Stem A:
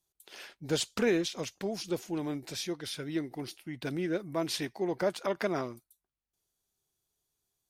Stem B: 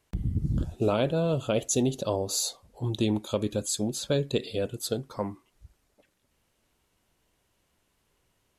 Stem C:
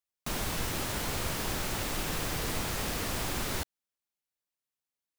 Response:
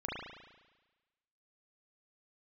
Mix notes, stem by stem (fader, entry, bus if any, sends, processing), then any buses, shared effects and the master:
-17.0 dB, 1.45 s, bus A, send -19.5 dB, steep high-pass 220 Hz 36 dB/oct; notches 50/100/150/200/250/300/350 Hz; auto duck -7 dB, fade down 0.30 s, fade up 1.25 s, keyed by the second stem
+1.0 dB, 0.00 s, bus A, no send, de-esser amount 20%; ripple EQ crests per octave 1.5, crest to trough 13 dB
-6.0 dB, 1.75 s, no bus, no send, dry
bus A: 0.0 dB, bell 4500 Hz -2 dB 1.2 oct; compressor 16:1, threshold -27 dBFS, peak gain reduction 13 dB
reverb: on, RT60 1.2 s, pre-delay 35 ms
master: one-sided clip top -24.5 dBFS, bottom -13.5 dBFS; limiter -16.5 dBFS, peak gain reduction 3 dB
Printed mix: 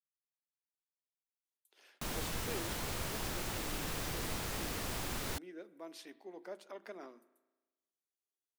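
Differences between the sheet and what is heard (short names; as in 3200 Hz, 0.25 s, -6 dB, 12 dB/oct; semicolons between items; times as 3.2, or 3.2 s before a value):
stem B: muted; master: missing one-sided clip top -24.5 dBFS, bottom -13.5 dBFS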